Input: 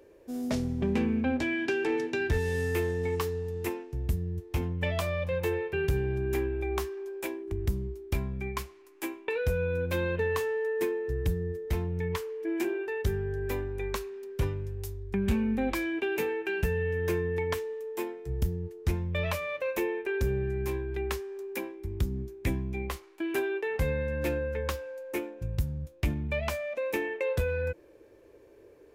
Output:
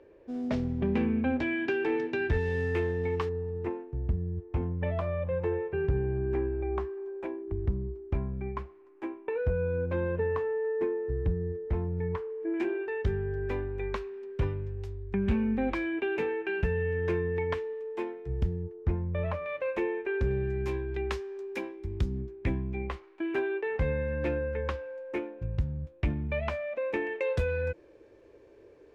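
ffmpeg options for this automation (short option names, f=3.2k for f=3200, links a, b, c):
-af "asetnsamples=n=441:p=0,asendcmd='3.29 lowpass f 1300;12.54 lowpass f 2700;18.63 lowpass f 1300;19.46 lowpass f 2500;20.31 lowpass f 4900;22.21 lowpass f 2500;27.07 lowpass f 5700',lowpass=2.9k"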